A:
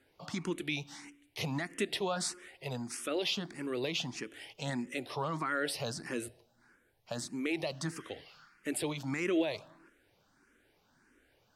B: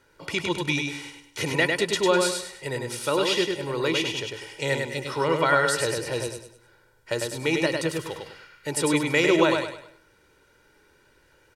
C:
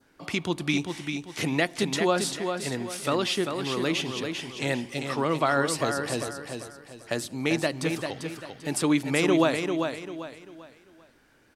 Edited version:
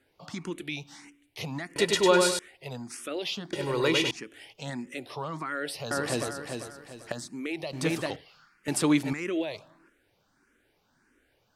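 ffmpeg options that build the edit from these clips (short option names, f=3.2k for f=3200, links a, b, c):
-filter_complex "[1:a]asplit=2[a][b];[2:a]asplit=3[c][d][e];[0:a]asplit=6[f][g][h][i][j][k];[f]atrim=end=1.762[l];[a]atrim=start=1.758:end=2.392[m];[g]atrim=start=2.388:end=3.532[n];[b]atrim=start=3.528:end=4.112[o];[h]atrim=start=4.108:end=5.912[p];[c]atrim=start=5.908:end=7.122[q];[i]atrim=start=7.118:end=7.732[r];[d]atrim=start=7.728:end=8.162[s];[j]atrim=start=8.158:end=8.682[t];[e]atrim=start=8.678:end=9.132[u];[k]atrim=start=9.128[v];[l][m]acrossfade=d=0.004:c1=hsin:c2=hsin[w];[w][n]acrossfade=d=0.004:c1=hsin:c2=hsin[x];[x][o]acrossfade=d=0.004:c1=hsin:c2=hsin[y];[y][p]acrossfade=d=0.004:c1=hsin:c2=hsin[z];[z][q]acrossfade=d=0.004:c1=hsin:c2=hsin[aa];[aa][r]acrossfade=d=0.004:c1=hsin:c2=hsin[ab];[ab][s]acrossfade=d=0.004:c1=hsin:c2=hsin[ac];[ac][t]acrossfade=d=0.004:c1=hsin:c2=hsin[ad];[ad][u]acrossfade=d=0.004:c1=hsin:c2=hsin[ae];[ae][v]acrossfade=d=0.004:c1=hsin:c2=hsin"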